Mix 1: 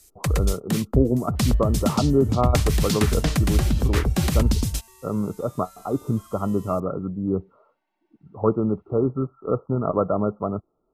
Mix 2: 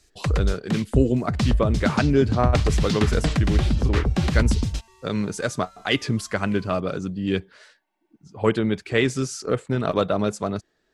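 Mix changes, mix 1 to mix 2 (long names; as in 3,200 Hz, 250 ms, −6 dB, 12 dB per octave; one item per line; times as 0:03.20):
speech: remove linear-phase brick-wall low-pass 1,400 Hz
first sound: add low-pass filter 4,700 Hz 12 dB per octave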